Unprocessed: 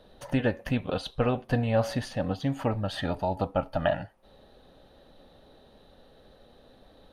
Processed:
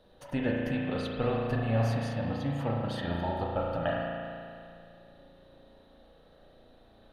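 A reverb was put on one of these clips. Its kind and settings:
spring reverb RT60 2.4 s, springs 35 ms, chirp 70 ms, DRR −2.5 dB
level −6.5 dB

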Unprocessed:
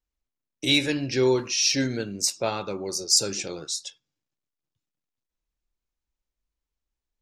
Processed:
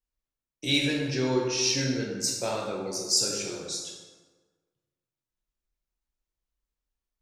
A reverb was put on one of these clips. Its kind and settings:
dense smooth reverb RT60 1.4 s, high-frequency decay 0.6×, DRR −1.5 dB
level −6 dB

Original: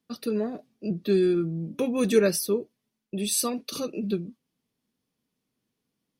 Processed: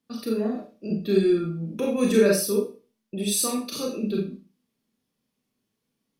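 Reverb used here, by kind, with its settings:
four-comb reverb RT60 0.35 s, combs from 28 ms, DRR −1 dB
level −1.5 dB

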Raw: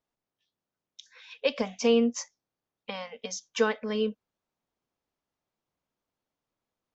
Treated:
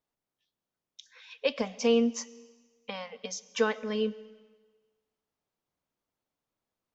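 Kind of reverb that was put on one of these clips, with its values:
comb and all-pass reverb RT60 1.4 s, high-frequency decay 1×, pre-delay 65 ms, DRR 19.5 dB
level −1.5 dB

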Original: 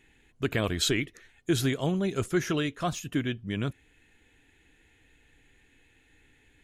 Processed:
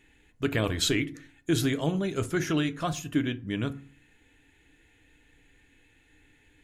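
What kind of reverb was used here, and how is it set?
feedback delay network reverb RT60 0.41 s, low-frequency decay 1.4×, high-frequency decay 0.55×, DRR 10 dB

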